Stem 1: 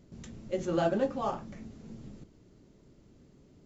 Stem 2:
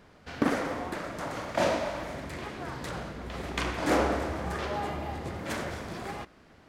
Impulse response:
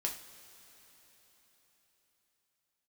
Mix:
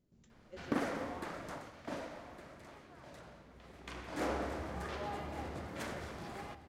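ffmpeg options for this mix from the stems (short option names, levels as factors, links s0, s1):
-filter_complex "[0:a]volume=0.112[s0];[1:a]adelay=300,volume=1.33,afade=t=out:st=1.49:d=0.22:silence=0.281838,afade=t=in:st=3.78:d=0.79:silence=0.298538,asplit=2[s1][s2];[s2]volume=0.266,aecho=0:1:1161:1[s3];[s0][s1][s3]amix=inputs=3:normalize=0"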